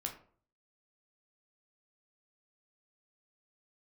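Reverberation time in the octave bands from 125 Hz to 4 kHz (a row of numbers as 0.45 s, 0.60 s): 0.65 s, 0.55 s, 0.55 s, 0.45 s, 0.35 s, 0.25 s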